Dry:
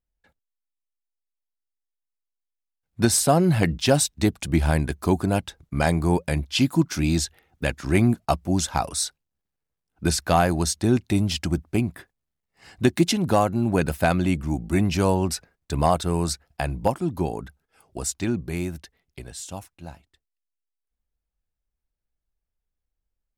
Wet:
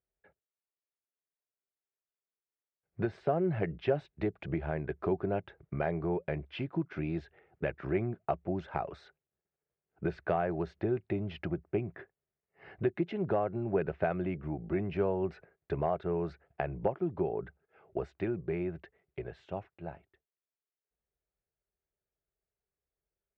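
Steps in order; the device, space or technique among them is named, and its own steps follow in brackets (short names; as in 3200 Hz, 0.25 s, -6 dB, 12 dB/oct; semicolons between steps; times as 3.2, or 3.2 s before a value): bass amplifier (compressor 3:1, threshold -30 dBFS, peak gain reduction 13 dB; speaker cabinet 79–2300 Hz, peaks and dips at 80 Hz -6 dB, 250 Hz -10 dB, 400 Hz +10 dB, 620 Hz +5 dB, 1000 Hz -4 dB); gain -2 dB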